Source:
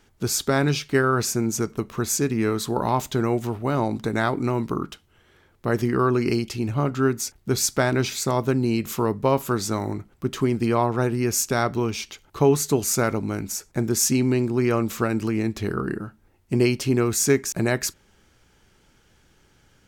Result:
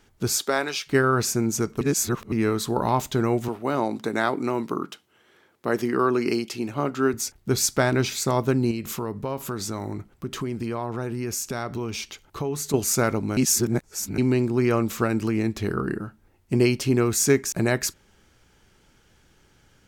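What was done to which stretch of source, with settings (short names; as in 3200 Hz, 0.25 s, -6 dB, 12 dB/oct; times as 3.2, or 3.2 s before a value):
0.37–0.86 HPF 290 Hz -> 830 Hz
1.81–2.32 reverse
3.48–7.14 HPF 220 Hz
8.71–12.74 compressor 3:1, threshold -27 dBFS
13.37–14.18 reverse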